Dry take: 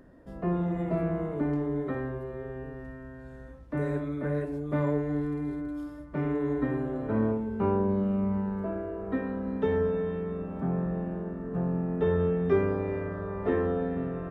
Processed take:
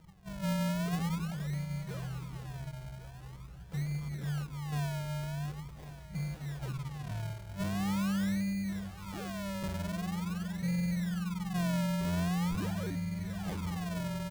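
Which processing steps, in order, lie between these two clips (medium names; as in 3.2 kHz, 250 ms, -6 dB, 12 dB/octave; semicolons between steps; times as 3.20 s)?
FFT band-reject 200–2100 Hz; dynamic bell 110 Hz, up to -3 dB, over -42 dBFS, Q 0.88; in parallel at -8.5 dB: saturation -39.5 dBFS, distortion -7 dB; on the sum: overdrive pedal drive 20 dB, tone 3.2 kHz, clips at -25.5 dBFS; decimation with a swept rate 39×, swing 100% 0.44 Hz; on a send: delay 1101 ms -15 dB; 6.73–7.21 s: on the sum: loudspeaker Doppler distortion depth 0.1 ms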